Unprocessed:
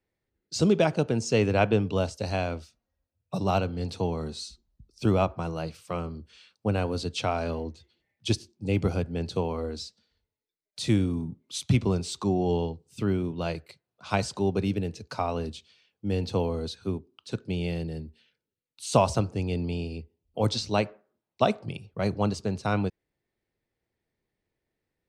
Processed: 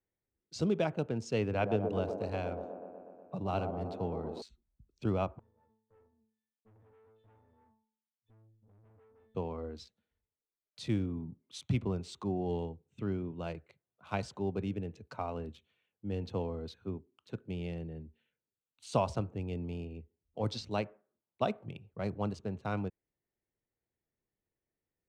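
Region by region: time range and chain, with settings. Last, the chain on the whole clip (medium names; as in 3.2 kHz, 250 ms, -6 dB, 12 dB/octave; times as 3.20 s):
1.41–4.42 s: distance through air 54 m + feedback echo behind a band-pass 122 ms, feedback 72%, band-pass 480 Hz, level -4.5 dB
5.39–9.35 s: companding laws mixed up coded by A + pitch-class resonator A, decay 0.57 s + valve stage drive 53 dB, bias 0.55
whole clip: local Wiener filter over 9 samples; treble shelf 7.9 kHz -11 dB; trim -8.5 dB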